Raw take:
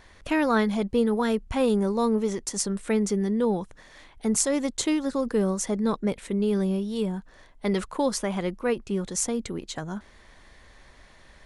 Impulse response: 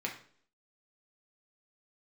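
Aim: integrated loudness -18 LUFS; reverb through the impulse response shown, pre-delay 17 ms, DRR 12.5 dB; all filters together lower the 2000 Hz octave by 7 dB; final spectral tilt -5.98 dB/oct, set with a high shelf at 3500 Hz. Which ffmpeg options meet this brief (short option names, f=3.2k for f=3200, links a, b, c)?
-filter_complex "[0:a]equalizer=f=2k:t=o:g=-7,highshelf=f=3.5k:g=-7,asplit=2[a][b];[1:a]atrim=start_sample=2205,adelay=17[c];[b][c]afir=irnorm=-1:irlink=0,volume=-16dB[d];[a][d]amix=inputs=2:normalize=0,volume=9dB"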